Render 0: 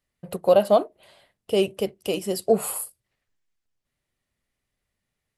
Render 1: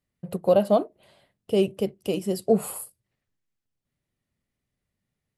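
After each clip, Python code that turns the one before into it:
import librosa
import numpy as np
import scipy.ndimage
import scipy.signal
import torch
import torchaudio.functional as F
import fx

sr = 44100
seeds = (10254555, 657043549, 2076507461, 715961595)

y = fx.peak_eq(x, sr, hz=160.0, db=9.5, octaves=2.7)
y = y * librosa.db_to_amplitude(-5.5)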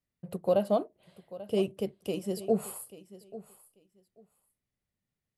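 y = fx.echo_feedback(x, sr, ms=839, feedback_pct=17, wet_db=-17)
y = y * librosa.db_to_amplitude(-6.5)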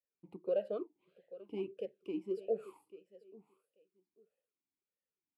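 y = fx.vowel_sweep(x, sr, vowels='e-u', hz=1.6)
y = y * librosa.db_to_amplitude(2.0)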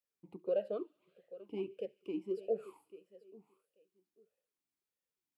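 y = fx.echo_wet_highpass(x, sr, ms=71, feedback_pct=73, hz=2300.0, wet_db=-20.0)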